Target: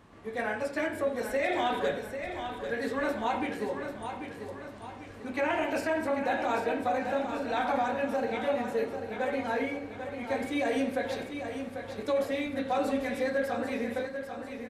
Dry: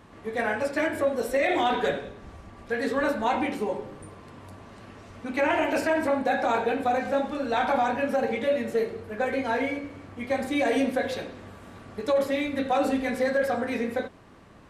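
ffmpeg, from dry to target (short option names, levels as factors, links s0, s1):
-af "aecho=1:1:793|1586|2379|3172|3965|4758:0.398|0.191|0.0917|0.044|0.0211|0.0101,volume=0.562"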